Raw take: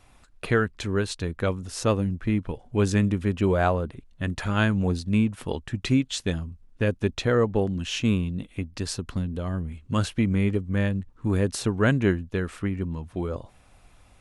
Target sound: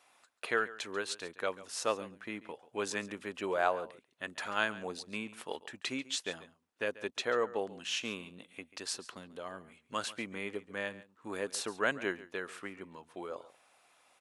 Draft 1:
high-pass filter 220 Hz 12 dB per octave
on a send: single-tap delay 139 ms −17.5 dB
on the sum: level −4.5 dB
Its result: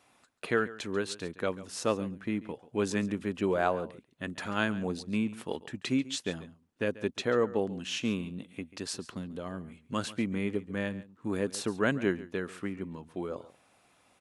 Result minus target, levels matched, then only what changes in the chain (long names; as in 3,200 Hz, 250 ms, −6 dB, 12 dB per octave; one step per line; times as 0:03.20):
250 Hz band +7.5 dB
change: high-pass filter 560 Hz 12 dB per octave